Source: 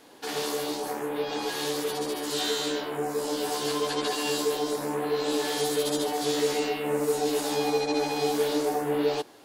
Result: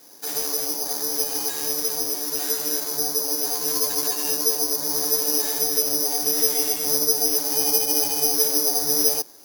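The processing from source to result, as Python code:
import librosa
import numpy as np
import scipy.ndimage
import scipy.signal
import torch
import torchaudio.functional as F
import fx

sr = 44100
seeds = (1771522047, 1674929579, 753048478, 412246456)

y = (np.kron(scipy.signal.resample_poly(x, 1, 8), np.eye(8)[0]) * 8)[:len(x)]
y = F.gain(torch.from_numpy(y), -3.5).numpy()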